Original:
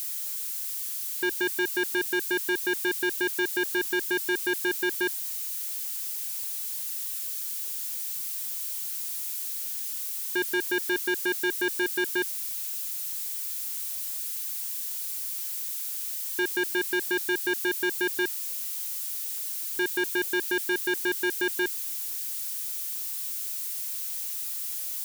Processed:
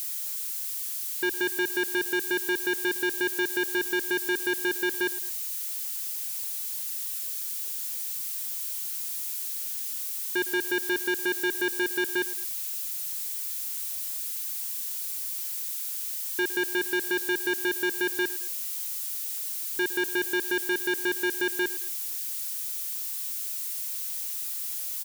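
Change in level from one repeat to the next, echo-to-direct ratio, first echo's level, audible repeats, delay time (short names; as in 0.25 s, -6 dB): -7.5 dB, -16.5 dB, -17.0 dB, 2, 0.11 s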